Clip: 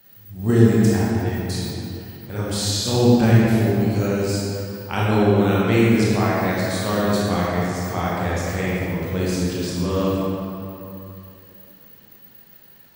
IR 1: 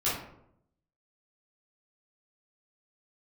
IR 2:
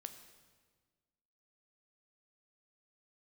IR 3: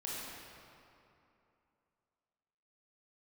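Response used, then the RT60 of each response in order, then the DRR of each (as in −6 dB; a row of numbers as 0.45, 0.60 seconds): 3; 0.75, 1.5, 2.8 seconds; −10.5, 7.5, −7.0 decibels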